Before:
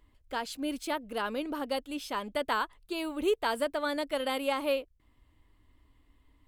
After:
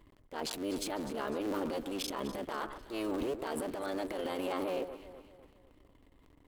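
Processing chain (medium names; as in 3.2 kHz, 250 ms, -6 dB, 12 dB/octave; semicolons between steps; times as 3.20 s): cycle switcher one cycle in 3, muted; peaking EQ 390 Hz +7.5 dB 1.8 oct; peak limiter -26.5 dBFS, peak gain reduction 14 dB; transient shaper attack -8 dB, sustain +8 dB; on a send: echo whose repeats swap between lows and highs 125 ms, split 1.8 kHz, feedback 66%, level -10 dB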